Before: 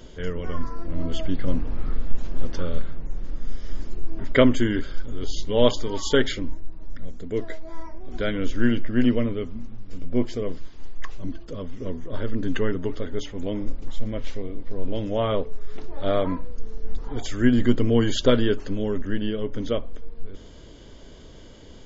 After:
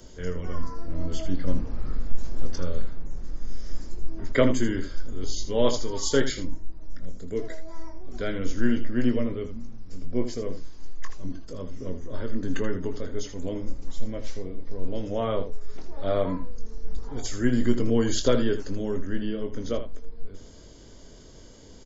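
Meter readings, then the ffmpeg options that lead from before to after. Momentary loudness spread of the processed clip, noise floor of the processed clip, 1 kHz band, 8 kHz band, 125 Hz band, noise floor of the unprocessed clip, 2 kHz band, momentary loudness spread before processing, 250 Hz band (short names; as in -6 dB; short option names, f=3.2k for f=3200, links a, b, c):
20 LU, -46 dBFS, -3.5 dB, n/a, -3.5 dB, -43 dBFS, -4.5 dB, 21 LU, -4.0 dB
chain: -filter_complex "[0:a]aemphasis=mode=reproduction:type=50kf,acrossover=split=160|1000|1200[a][b][c][d];[d]aexciter=amount=6.2:drive=4.3:freq=4.6k[e];[a][b][c][e]amix=inputs=4:normalize=0,aecho=1:1:22|80:0.376|0.299,volume=-4dB"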